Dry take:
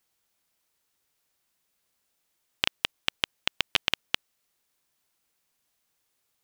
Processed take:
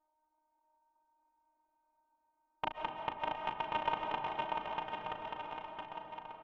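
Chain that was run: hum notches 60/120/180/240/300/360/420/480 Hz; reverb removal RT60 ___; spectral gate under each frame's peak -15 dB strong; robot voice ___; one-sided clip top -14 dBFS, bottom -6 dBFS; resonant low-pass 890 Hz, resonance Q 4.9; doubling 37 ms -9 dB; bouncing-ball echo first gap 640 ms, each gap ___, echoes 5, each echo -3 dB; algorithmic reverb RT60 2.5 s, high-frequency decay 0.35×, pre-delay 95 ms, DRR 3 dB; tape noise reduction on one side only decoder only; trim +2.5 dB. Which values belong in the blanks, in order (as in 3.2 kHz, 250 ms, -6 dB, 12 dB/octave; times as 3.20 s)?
1.1 s, 308 Hz, 0.85×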